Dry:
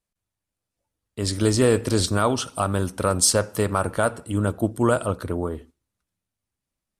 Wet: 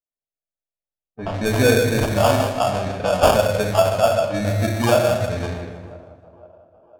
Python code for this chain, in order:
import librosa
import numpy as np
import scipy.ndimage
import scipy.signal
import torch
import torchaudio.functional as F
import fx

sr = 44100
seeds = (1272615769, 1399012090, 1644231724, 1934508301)

y = fx.bin_expand(x, sr, power=1.5)
y = fx.echo_thinned(y, sr, ms=500, feedback_pct=67, hz=290.0, wet_db=-23.0)
y = fx.room_shoebox(y, sr, seeds[0], volume_m3=600.0, walls='mixed', distance_m=1.7)
y = fx.sample_hold(y, sr, seeds[1], rate_hz=2000.0, jitter_pct=0)
y = fx.dynamic_eq(y, sr, hz=340.0, q=1.6, threshold_db=-35.0, ratio=4.0, max_db=-6)
y = fx.env_lowpass(y, sr, base_hz=940.0, full_db=-19.0)
y = fx.peak_eq(y, sr, hz=630.0, db=11.5, octaves=0.49)
y = fx.echo_warbled(y, sr, ms=157, feedback_pct=44, rate_hz=2.8, cents=118, wet_db=-13.5)